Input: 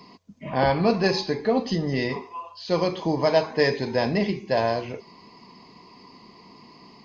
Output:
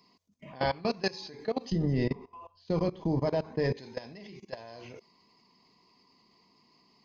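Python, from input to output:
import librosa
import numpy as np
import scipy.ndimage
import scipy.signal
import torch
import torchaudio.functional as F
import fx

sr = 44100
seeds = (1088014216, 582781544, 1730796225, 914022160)

y = fx.tilt_eq(x, sr, slope=-4.0, at=(1.72, 3.77))
y = fx.level_steps(y, sr, step_db=20)
y = fx.high_shelf(y, sr, hz=4000.0, db=10.5)
y = y * librosa.db_to_amplitude(-7.0)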